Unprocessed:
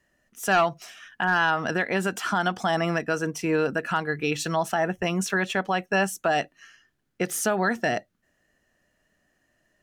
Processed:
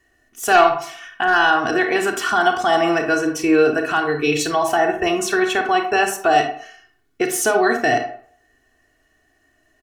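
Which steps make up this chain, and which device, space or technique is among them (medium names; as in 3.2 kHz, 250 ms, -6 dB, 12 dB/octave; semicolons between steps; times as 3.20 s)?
microphone above a desk (comb 2.7 ms, depth 86%; reverberation RT60 0.55 s, pre-delay 29 ms, DRR 4.5 dB); trim +4 dB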